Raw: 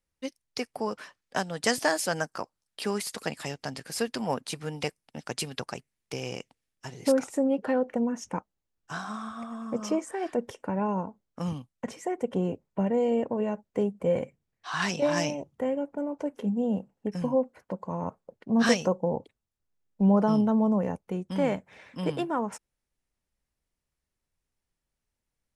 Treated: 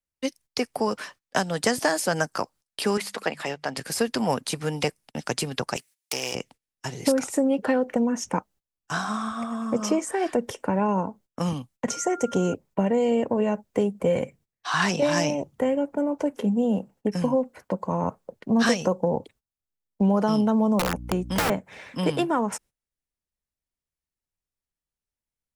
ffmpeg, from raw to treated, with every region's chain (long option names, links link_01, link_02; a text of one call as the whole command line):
ffmpeg -i in.wav -filter_complex "[0:a]asettb=1/sr,asplit=3[link_01][link_02][link_03];[link_01]atrim=end=2.974[link_04];[link_02]atrim=start=2.97:end=3.77,asetpts=PTS-STARTPTS,afade=type=in:duration=0.004:curve=qsin,afade=type=out:start_time=0.796:duration=0.004:curve=qsin,bass=frequency=250:gain=-11,treble=frequency=4000:gain=-13,bandreject=frequency=50:width_type=h:width=6,bandreject=frequency=100:width_type=h:width=6,bandreject=frequency=150:width_type=h:width=6,bandreject=frequency=200:width_type=h:width=6[link_05];[link_03]atrim=start=3.766[link_06];[link_04][link_05]acrossfade=duration=0.004:curve1=hsin:curve2=qsin[link_07];[link_07][link_06]acrossfade=duration=0.004:curve1=qsin:curve2=hsin,asettb=1/sr,asplit=3[link_08][link_09][link_10];[link_08]atrim=end=5.764[link_11];[link_09]atrim=start=5.76:end=6.35,asetpts=PTS-STARTPTS,afade=type=in:duration=0.004:curve=qsin,afade=type=out:start_time=0.586:duration=0.004:curve=qsin,aeval=exprs='clip(val(0),-1,0.01)':channel_layout=same,highpass=frequency=650:poles=1,highshelf=frequency=2300:gain=11.5[link_12];[link_10]atrim=start=6.346[link_13];[link_11][link_12]acrossfade=duration=0.004:curve1=hsin:curve2=qsin[link_14];[link_14][link_13]acrossfade=duration=0.004:curve1=qsin:curve2=hsin,asettb=1/sr,asplit=3[link_15][link_16][link_17];[link_15]atrim=end=11.904[link_18];[link_16]atrim=start=11.9:end=12.54,asetpts=PTS-STARTPTS,afade=type=in:duration=0.004:curve=qsin,afade=type=out:start_time=0.636:duration=0.004:curve=qsin,equalizer=frequency=6300:width=2:gain=15,aeval=exprs='val(0)+0.00631*sin(2*PI*1400*n/s)':channel_layout=same[link_19];[link_17]atrim=start=12.536[link_20];[link_18][link_19]acrossfade=duration=0.004:curve1=hsin:curve2=qsin[link_21];[link_21][link_20]acrossfade=duration=0.004:curve1=qsin:curve2=hsin,asettb=1/sr,asplit=3[link_22][link_23][link_24];[link_22]atrim=end=20.794[link_25];[link_23]atrim=start=20.79:end=21.5,asetpts=PTS-STARTPTS,afade=type=in:duration=0.004:curve=qsin,afade=type=out:start_time=0.706:duration=0.004:curve=qsin,aeval=exprs='(mod(12.6*val(0)+1,2)-1)/12.6':channel_layout=same,aeval=exprs='val(0)+0.00794*(sin(2*PI*60*n/s)+sin(2*PI*2*60*n/s)/2+sin(2*PI*3*60*n/s)/3+sin(2*PI*4*60*n/s)/4+sin(2*PI*5*60*n/s)/5)':channel_layout=same[link_26];[link_24]atrim=start=21.496[link_27];[link_25][link_26]acrossfade=duration=0.004:curve1=hsin:curve2=qsin[link_28];[link_28][link_27]acrossfade=duration=0.004:curve1=qsin:curve2=hsin,agate=range=-17dB:threshold=-56dB:ratio=16:detection=peak,highshelf=frequency=5500:gain=4.5,acrossover=split=200|1700[link_29][link_30][link_31];[link_29]acompressor=threshold=-39dB:ratio=4[link_32];[link_30]acompressor=threshold=-28dB:ratio=4[link_33];[link_31]acompressor=threshold=-36dB:ratio=4[link_34];[link_32][link_33][link_34]amix=inputs=3:normalize=0,volume=7.5dB" out.wav